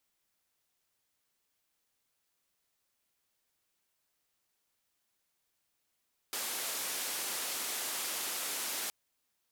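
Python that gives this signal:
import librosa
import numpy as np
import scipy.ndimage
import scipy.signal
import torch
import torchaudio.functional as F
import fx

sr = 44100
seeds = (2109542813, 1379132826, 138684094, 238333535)

y = fx.band_noise(sr, seeds[0], length_s=2.57, low_hz=290.0, high_hz=14000.0, level_db=-37.0)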